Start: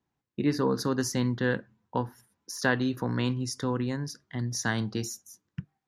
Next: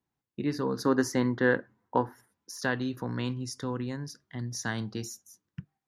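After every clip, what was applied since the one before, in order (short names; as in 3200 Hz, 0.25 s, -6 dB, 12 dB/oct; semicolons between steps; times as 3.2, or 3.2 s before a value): spectral gain 0.85–2.32, 240–2200 Hz +8 dB; gain -4 dB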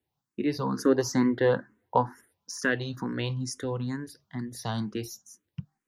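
endless phaser +2.2 Hz; gain +5 dB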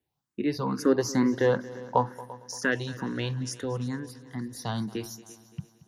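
multi-head echo 0.114 s, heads second and third, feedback 47%, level -19.5 dB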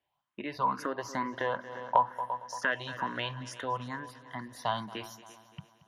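compressor 3:1, threshold -29 dBFS, peak gain reduction 9.5 dB; band shelf 1500 Hz +12.5 dB 2.8 oct; small resonant body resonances 610/1000/3100 Hz, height 9 dB, ringing for 30 ms; gain -8.5 dB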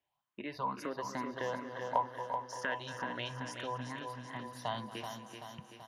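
dynamic EQ 1300 Hz, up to -5 dB, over -41 dBFS, Q 1.1; feedback echo 0.382 s, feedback 57%, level -7 dB; gain -4 dB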